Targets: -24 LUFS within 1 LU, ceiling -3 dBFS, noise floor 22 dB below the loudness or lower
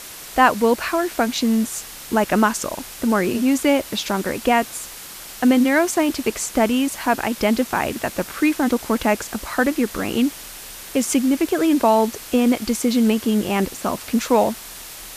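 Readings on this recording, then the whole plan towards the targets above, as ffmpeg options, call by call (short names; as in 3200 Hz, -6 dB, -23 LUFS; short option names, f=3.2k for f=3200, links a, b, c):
noise floor -37 dBFS; noise floor target -42 dBFS; loudness -20.0 LUFS; peak -2.0 dBFS; loudness target -24.0 LUFS
-> -af "afftdn=nr=6:nf=-37"
-af "volume=-4dB"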